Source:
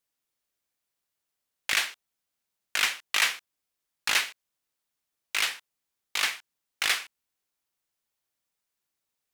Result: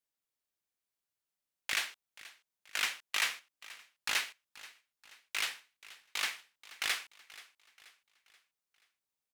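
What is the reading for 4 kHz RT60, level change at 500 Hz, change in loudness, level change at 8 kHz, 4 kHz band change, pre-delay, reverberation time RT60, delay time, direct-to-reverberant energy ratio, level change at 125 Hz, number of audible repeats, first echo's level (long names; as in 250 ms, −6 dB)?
no reverb audible, −7.5 dB, −7.5 dB, −7.5 dB, −7.5 dB, no reverb audible, no reverb audible, 481 ms, no reverb audible, can't be measured, 3, −19.0 dB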